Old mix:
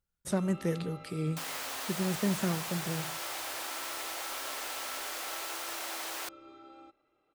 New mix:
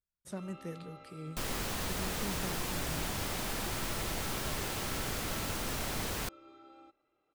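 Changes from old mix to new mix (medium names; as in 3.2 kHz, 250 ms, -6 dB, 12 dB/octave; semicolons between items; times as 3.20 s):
speech -11.0 dB; first sound -3.5 dB; second sound: remove high-pass 570 Hz 24 dB/octave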